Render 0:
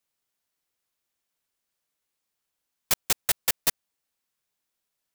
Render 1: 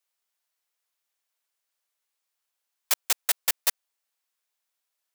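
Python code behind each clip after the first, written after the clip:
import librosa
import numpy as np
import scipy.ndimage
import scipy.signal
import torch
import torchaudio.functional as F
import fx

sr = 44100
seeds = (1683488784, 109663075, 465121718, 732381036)

y = scipy.signal.sosfilt(scipy.signal.butter(2, 570.0, 'highpass', fs=sr, output='sos'), x)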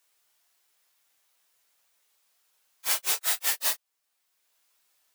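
y = fx.phase_scramble(x, sr, seeds[0], window_ms=100)
y = fx.band_squash(y, sr, depth_pct=40)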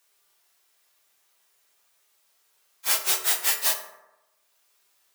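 y = fx.rev_fdn(x, sr, rt60_s=0.98, lf_ratio=0.85, hf_ratio=0.45, size_ms=15.0, drr_db=3.5)
y = F.gain(torch.from_numpy(y), 2.5).numpy()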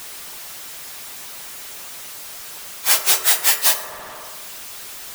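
y = x + 0.5 * 10.0 ** (-35.0 / 20.0) * np.sign(x)
y = fx.hpss(y, sr, part='percussive', gain_db=7)
y = F.gain(torch.from_numpy(y), 1.5).numpy()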